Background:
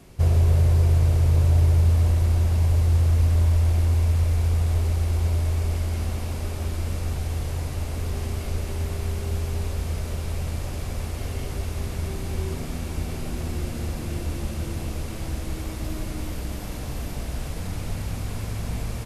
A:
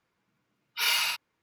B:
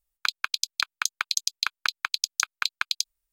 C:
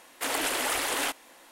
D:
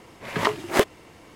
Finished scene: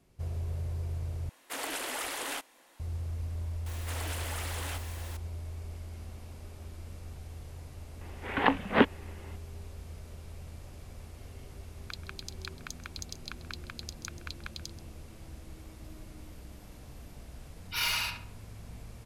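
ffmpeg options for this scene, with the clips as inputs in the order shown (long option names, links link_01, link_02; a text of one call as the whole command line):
ffmpeg -i bed.wav -i cue0.wav -i cue1.wav -i cue2.wav -i cue3.wav -filter_complex "[3:a]asplit=2[link_01][link_02];[0:a]volume=-17dB[link_03];[link_02]aeval=exprs='val(0)+0.5*0.0376*sgn(val(0))':channel_layout=same[link_04];[4:a]highpass=frequency=330:width_type=q:width=0.5412,highpass=frequency=330:width_type=q:width=1.307,lowpass=frequency=3500:width_type=q:width=0.5176,lowpass=frequency=3500:width_type=q:width=0.7071,lowpass=frequency=3500:width_type=q:width=1.932,afreqshift=-150[link_05];[2:a]aecho=1:1:132:0.158[link_06];[1:a]asplit=2[link_07][link_08];[link_08]adelay=69,lowpass=frequency=2100:poles=1,volume=-3dB,asplit=2[link_09][link_10];[link_10]adelay=69,lowpass=frequency=2100:poles=1,volume=0.47,asplit=2[link_11][link_12];[link_12]adelay=69,lowpass=frequency=2100:poles=1,volume=0.47,asplit=2[link_13][link_14];[link_14]adelay=69,lowpass=frequency=2100:poles=1,volume=0.47,asplit=2[link_15][link_16];[link_16]adelay=69,lowpass=frequency=2100:poles=1,volume=0.47,asplit=2[link_17][link_18];[link_18]adelay=69,lowpass=frequency=2100:poles=1,volume=0.47[link_19];[link_07][link_09][link_11][link_13][link_15][link_17][link_19]amix=inputs=7:normalize=0[link_20];[link_03]asplit=2[link_21][link_22];[link_21]atrim=end=1.294[link_23];[link_01]atrim=end=1.51,asetpts=PTS-STARTPTS,volume=-7.5dB[link_24];[link_22]atrim=start=2.796[link_25];[link_04]atrim=end=1.51,asetpts=PTS-STARTPTS,volume=-14dB,afade=type=in:duration=0.004:curve=hsin,afade=type=out:start_time=1.506:duration=0.004:curve=hsin,adelay=3660[link_26];[link_05]atrim=end=1.35,asetpts=PTS-STARTPTS,volume=-1.5dB,afade=type=in:duration=0.004:curve=hsin,afade=type=out:start_time=1.346:duration=0.004:curve=hsin,adelay=8010[link_27];[link_06]atrim=end=3.32,asetpts=PTS-STARTPTS,volume=-17dB,afade=type=in:duration=0.004:curve=hsin,afade=type=out:start_time=3.316:duration=0.004:curve=hsin,adelay=11650[link_28];[link_20]atrim=end=1.42,asetpts=PTS-STARTPTS,volume=-5dB,afade=type=in:duration=0.004:curve=hsin,afade=type=out:start_time=1.416:duration=0.004:curve=hsin,adelay=16950[link_29];[link_23][link_24]acrossfade=duration=0.004:curve1=hsin:curve2=hsin[link_30];[link_30][link_25]acrossfade=duration=0.004:curve1=hsin:curve2=hsin[link_31];[link_31][link_26][link_27][link_28][link_29]amix=inputs=5:normalize=0" out.wav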